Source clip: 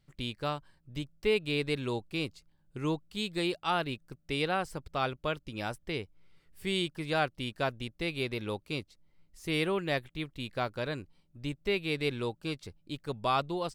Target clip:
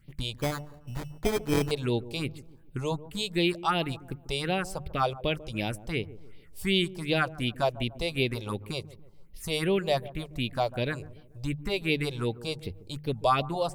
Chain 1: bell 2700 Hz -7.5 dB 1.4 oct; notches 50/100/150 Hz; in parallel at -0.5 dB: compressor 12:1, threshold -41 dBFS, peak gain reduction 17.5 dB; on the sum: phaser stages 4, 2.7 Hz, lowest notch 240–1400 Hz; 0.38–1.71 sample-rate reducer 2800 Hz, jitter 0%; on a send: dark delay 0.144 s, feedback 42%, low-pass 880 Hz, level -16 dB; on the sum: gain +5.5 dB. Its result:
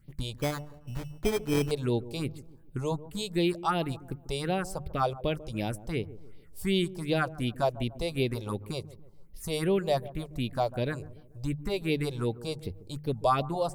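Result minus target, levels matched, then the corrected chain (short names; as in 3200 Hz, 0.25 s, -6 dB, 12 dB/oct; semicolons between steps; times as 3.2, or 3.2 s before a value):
2000 Hz band -4.0 dB
notches 50/100/150 Hz; in parallel at -0.5 dB: compressor 12:1, threshold -41 dBFS, peak gain reduction 18.5 dB; on the sum: phaser stages 4, 2.7 Hz, lowest notch 240–1400 Hz; 0.38–1.71 sample-rate reducer 2800 Hz, jitter 0%; on a send: dark delay 0.144 s, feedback 42%, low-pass 880 Hz, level -16 dB; on the sum: gain +5.5 dB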